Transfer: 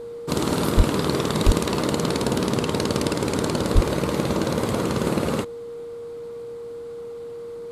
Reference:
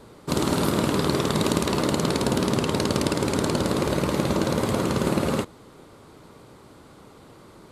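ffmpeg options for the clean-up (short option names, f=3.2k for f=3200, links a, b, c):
-filter_complex "[0:a]bandreject=f=470:w=30,asplit=3[a][b][c];[a]afade=t=out:st=0.76:d=0.02[d];[b]highpass=f=140:w=0.5412,highpass=f=140:w=1.3066,afade=t=in:st=0.76:d=0.02,afade=t=out:st=0.88:d=0.02[e];[c]afade=t=in:st=0.88:d=0.02[f];[d][e][f]amix=inputs=3:normalize=0,asplit=3[g][h][i];[g]afade=t=out:st=1.45:d=0.02[j];[h]highpass=f=140:w=0.5412,highpass=f=140:w=1.3066,afade=t=in:st=1.45:d=0.02,afade=t=out:st=1.57:d=0.02[k];[i]afade=t=in:st=1.57:d=0.02[l];[j][k][l]amix=inputs=3:normalize=0,asplit=3[m][n][o];[m]afade=t=out:st=3.74:d=0.02[p];[n]highpass=f=140:w=0.5412,highpass=f=140:w=1.3066,afade=t=in:st=3.74:d=0.02,afade=t=out:st=3.86:d=0.02[q];[o]afade=t=in:st=3.86:d=0.02[r];[p][q][r]amix=inputs=3:normalize=0"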